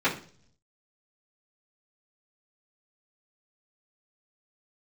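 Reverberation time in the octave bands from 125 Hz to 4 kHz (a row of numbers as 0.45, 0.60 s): 1.0, 0.70, 0.55, 0.40, 0.40, 0.50 s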